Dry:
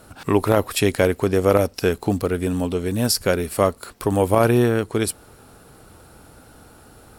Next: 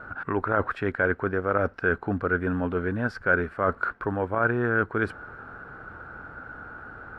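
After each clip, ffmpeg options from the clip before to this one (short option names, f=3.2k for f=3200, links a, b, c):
-af "areverse,acompressor=threshold=-24dB:ratio=6,areverse,lowpass=f=1.5k:t=q:w=7"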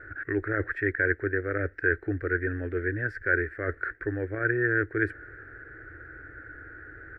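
-af "firequalizer=gain_entry='entry(110,0);entry(200,-27);entry(310,3);entry(970,-27);entry(1800,11);entry(2800,-13);entry(4100,-15);entry(7700,-10)':delay=0.05:min_phase=1"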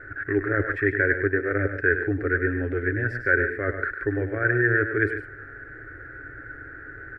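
-filter_complex "[0:a]aecho=1:1:7.3:0.32,asplit=2[a][b];[b]aecho=0:1:102|142.9:0.355|0.251[c];[a][c]amix=inputs=2:normalize=0,volume=3.5dB"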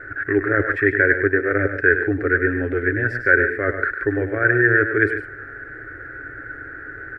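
-af "lowshelf=f=170:g=-6,volume=6dB"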